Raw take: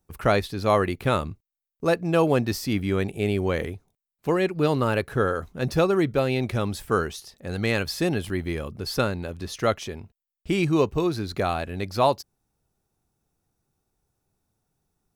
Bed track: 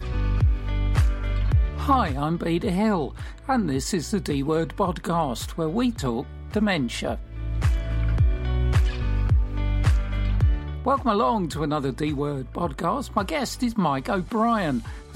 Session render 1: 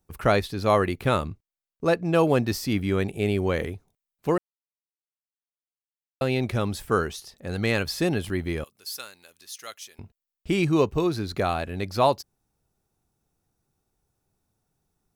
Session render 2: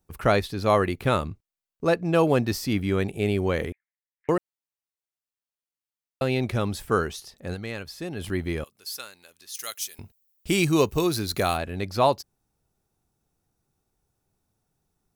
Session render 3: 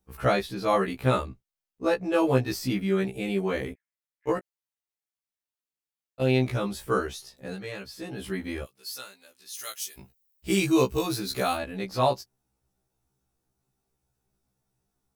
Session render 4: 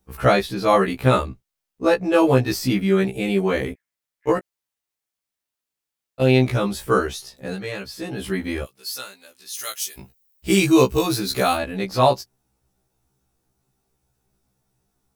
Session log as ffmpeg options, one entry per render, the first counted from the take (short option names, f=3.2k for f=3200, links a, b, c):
-filter_complex "[0:a]asettb=1/sr,asplit=3[a][b][c];[a]atrim=end=1.274[d];[b]atrim=start=1.27:end=2.15,asetpts=PTS-STARTPTS,afade=t=in:d=0.004:c=qsin,afade=t=out:st=0.876:d=0.004:c=qsin,highshelf=f=9.3k:g=-8[e];[c]atrim=start=2.146[f];[d][e]acrossfade=d=0.004:c1=hsin:c2=qsin[g];[g][f]acrossfade=d=0.004:c1=qsin:c2=hsin,asettb=1/sr,asplit=3[h][i][j];[h]atrim=end=8.644[k];[i]atrim=start=8.64:end=9.99,asetpts=PTS-STARTPTS,afade=t=in:d=0.004:c=qsin,afade=t=out:st=1.346:d=0.004:c=qsin,aderivative[l];[j]atrim=start=9.986[m];[k][l]acrossfade=d=0.004:c1=hsin:c2=qsin[n];[n][m]acrossfade=d=0.004:c1=qsin:c2=hsin,asplit=3[o][p][q];[o]atrim=end=4.38,asetpts=PTS-STARTPTS,afade=t=out:st=4.376:d=0.004:c=hsin[r];[p]atrim=start=4.38:end=6.21,asetpts=PTS-STARTPTS,volume=0[s];[q]atrim=start=6.21,asetpts=PTS-STARTPTS,afade=t=in:d=0.004:c=hsin[t];[r][s][t]concat=n=3:v=0:a=1"
-filter_complex "[0:a]asettb=1/sr,asplit=3[a][b][c];[a]atrim=end=3.724[d];[b]atrim=start=3.72:end=4.29,asetpts=PTS-STARTPTS,afade=t=in:d=0.004:c=qsin,afade=t=out:st=0.566:d=0.004:c=qsin,asuperpass=centerf=1900:order=4:qfactor=4.3[e];[c]atrim=start=4.286[f];[d][e]acrossfade=d=0.004:c1=hsin:c2=qsin[g];[g][f]acrossfade=d=0.004:c1=qsin:c2=hsin,asplit=3[h][i][j];[h]afade=t=out:st=9.54:d=0.02[k];[i]aemphasis=mode=production:type=75kf,afade=t=in:st=9.54:d=0.02,afade=t=out:st=11.56:d=0.02[l];[j]afade=t=in:st=11.56:d=0.02[m];[k][l][m]amix=inputs=3:normalize=0,asplit=3[n][o][p];[n]atrim=end=7.84,asetpts=PTS-STARTPTS,afade=t=out:st=7.53:d=0.31:c=exp:silence=0.316228[q];[o]atrim=start=7.84:end=7.91,asetpts=PTS-STARTPTS,volume=-10dB[r];[p]atrim=start=7.91,asetpts=PTS-STARTPTS,afade=t=in:d=0.31:c=exp:silence=0.316228[s];[q][r][s]concat=n=3:v=0:a=1"
-af "afftfilt=real='re*1.73*eq(mod(b,3),0)':imag='im*1.73*eq(mod(b,3),0)':win_size=2048:overlap=0.75"
-af "volume=7dB,alimiter=limit=-3dB:level=0:latency=1"